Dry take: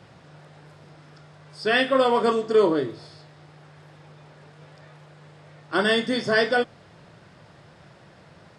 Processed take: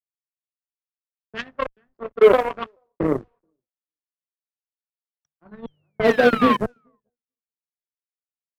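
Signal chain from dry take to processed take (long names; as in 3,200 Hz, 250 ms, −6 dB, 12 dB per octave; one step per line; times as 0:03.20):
slices reordered back to front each 333 ms, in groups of 2
all-pass phaser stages 2, 0.36 Hz, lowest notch 160–2,300 Hz
sound drawn into the spectrogram fall, 0:05.24–0:06.57, 1,000–5,900 Hz −19 dBFS
slack as between gear wheels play −27.5 dBFS
treble cut that deepens with the level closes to 760 Hz, closed at −21 dBFS
on a send: repeating echo 432 ms, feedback 46%, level −19 dB
on the sum: bit reduction 9 bits
harmonic generator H 7 −18 dB, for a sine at −13 dBFS
low-pass that shuts in the quiet parts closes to 670 Hz, open at −22 dBFS
downward expander −55 dBFS
multiband upward and downward expander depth 70%
level +6 dB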